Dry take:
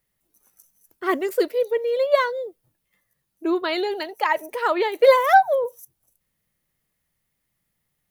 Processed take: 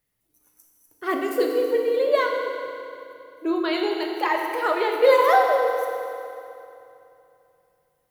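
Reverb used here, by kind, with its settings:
feedback delay network reverb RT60 2.8 s, low-frequency decay 1.3×, high-frequency decay 0.85×, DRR 0.5 dB
level −3 dB

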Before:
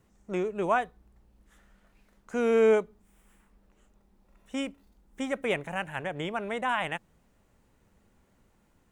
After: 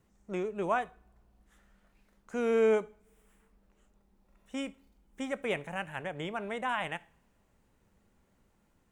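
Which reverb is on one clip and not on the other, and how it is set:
coupled-rooms reverb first 0.44 s, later 2.3 s, from −28 dB, DRR 16.5 dB
level −4 dB

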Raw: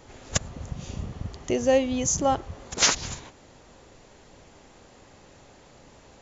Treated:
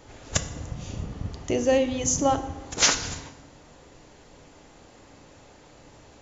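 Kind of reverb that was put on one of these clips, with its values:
feedback delay network reverb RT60 0.97 s, low-frequency decay 1.5×, high-frequency decay 0.8×, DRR 8 dB

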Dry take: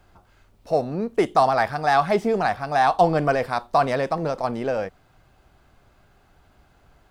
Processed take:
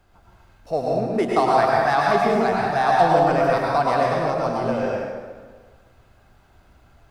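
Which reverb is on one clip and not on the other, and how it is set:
dense smooth reverb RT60 1.5 s, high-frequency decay 0.75×, pre-delay 90 ms, DRR −3.5 dB
level −3 dB

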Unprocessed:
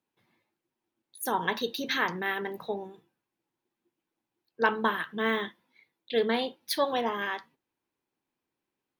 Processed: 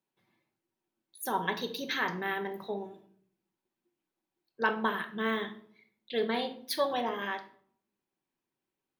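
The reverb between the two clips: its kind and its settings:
rectangular room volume 870 cubic metres, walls furnished, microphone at 1.1 metres
level −4 dB

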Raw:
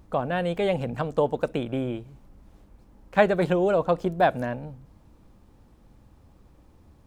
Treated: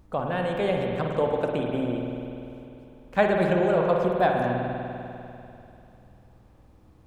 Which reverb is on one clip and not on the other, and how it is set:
spring reverb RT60 2.9 s, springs 49 ms, chirp 20 ms, DRR 0.5 dB
level −2.5 dB

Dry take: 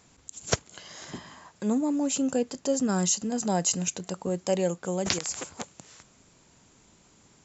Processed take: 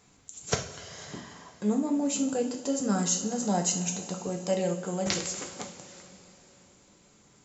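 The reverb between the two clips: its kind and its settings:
coupled-rooms reverb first 0.39 s, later 3.7 s, from −16 dB, DRR 1.5 dB
level −3.5 dB

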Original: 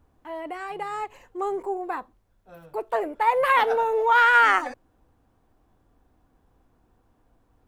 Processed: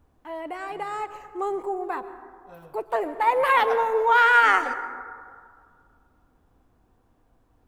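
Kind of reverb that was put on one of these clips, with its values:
dense smooth reverb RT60 2.1 s, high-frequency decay 0.3×, pre-delay 105 ms, DRR 12 dB

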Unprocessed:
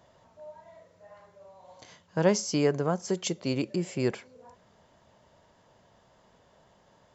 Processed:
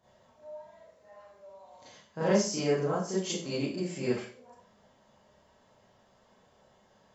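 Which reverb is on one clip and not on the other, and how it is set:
four-comb reverb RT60 0.42 s, combs from 29 ms, DRR −9.5 dB
level −11.5 dB

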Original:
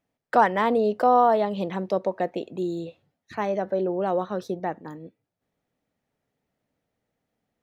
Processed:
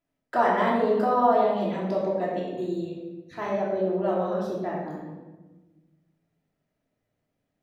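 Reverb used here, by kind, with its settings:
rectangular room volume 710 cubic metres, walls mixed, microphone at 3 metres
level −8 dB

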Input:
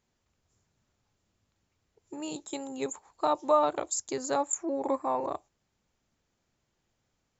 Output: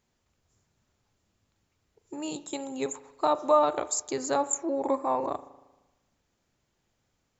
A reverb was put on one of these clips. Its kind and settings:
spring reverb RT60 1.1 s, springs 38 ms, chirp 40 ms, DRR 14.5 dB
level +2 dB

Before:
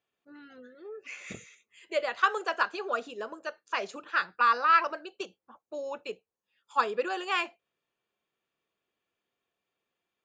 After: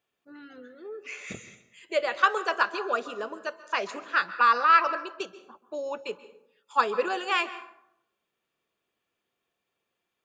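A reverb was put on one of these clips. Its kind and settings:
dense smooth reverb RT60 0.75 s, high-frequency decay 0.55×, pre-delay 120 ms, DRR 14 dB
level +3 dB

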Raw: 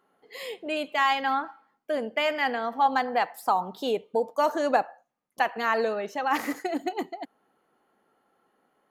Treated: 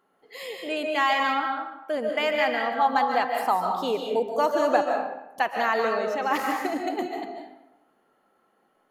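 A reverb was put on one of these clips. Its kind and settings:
comb and all-pass reverb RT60 0.88 s, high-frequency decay 0.7×, pre-delay 105 ms, DRR 2 dB

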